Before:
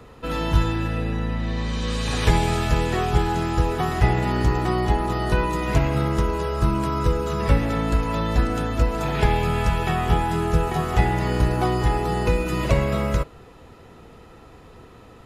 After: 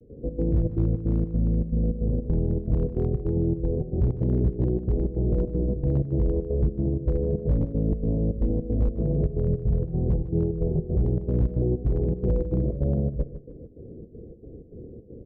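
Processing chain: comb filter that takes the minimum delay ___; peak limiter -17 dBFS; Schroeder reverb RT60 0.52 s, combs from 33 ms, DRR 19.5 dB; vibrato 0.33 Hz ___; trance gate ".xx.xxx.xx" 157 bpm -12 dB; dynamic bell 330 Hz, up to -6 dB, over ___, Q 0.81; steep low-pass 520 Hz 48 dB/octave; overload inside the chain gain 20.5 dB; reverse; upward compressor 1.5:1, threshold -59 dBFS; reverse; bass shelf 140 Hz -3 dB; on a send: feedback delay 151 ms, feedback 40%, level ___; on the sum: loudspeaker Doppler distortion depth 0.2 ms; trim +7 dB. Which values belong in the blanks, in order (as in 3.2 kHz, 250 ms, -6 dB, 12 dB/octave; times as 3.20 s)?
0.31 ms, 18 cents, -40 dBFS, -13 dB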